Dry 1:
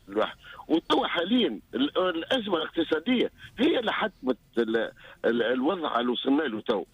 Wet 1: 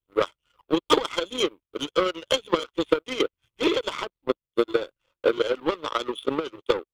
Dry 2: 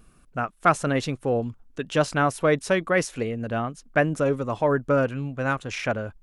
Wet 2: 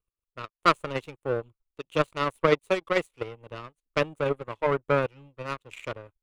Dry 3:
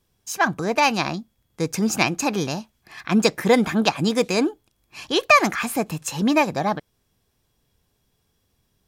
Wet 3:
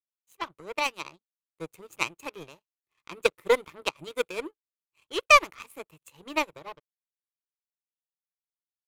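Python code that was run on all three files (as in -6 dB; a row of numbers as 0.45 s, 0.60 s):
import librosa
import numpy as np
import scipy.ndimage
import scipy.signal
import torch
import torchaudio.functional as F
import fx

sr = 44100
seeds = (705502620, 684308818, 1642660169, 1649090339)

y = fx.fixed_phaser(x, sr, hz=1100.0, stages=8)
y = fx.power_curve(y, sr, exponent=2.0)
y = librosa.util.normalize(y) * 10.0 ** (-3 / 20.0)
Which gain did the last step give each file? +11.0 dB, +7.0 dB, +2.5 dB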